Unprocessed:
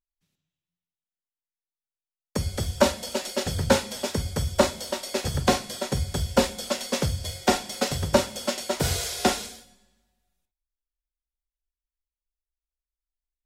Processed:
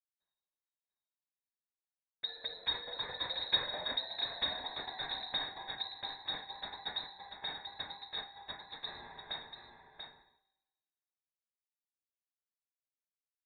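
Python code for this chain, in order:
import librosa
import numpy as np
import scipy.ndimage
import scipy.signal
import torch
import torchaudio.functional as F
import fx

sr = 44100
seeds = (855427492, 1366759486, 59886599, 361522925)

p1 = fx.doppler_pass(x, sr, speed_mps=19, closest_m=18.0, pass_at_s=3.91)
p2 = fx.peak_eq(p1, sr, hz=1300.0, db=-4.5, octaves=0.25)
p3 = fx.over_compress(p2, sr, threshold_db=-34.0, ratio=-1.0)
p4 = p2 + F.gain(torch.from_numpy(p3), 0.0).numpy()
p5 = fx.vowel_filter(p4, sr, vowel='i')
p6 = fx.high_shelf(p5, sr, hz=2900.0, db=5.5)
p7 = p6 + fx.echo_single(p6, sr, ms=688, db=-7.0, dry=0)
y = fx.freq_invert(p7, sr, carrier_hz=4000)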